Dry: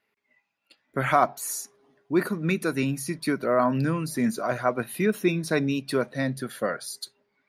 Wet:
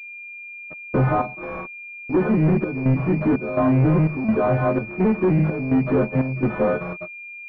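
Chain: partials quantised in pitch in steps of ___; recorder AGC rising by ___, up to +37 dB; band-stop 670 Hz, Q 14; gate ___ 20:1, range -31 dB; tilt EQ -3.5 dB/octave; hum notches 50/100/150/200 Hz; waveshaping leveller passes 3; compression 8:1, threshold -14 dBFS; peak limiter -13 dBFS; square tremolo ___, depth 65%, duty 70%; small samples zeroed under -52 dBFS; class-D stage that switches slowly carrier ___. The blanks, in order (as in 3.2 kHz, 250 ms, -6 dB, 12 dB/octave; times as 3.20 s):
3 st, 13 dB/s, -46 dBFS, 1.4 Hz, 2.4 kHz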